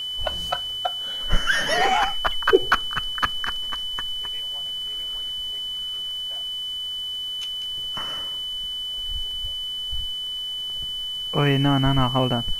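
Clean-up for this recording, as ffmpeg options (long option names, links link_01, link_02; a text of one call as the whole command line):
ffmpeg -i in.wav -af "adeclick=threshold=4,bandreject=frequency=3000:width=30,afwtdn=0.0035" out.wav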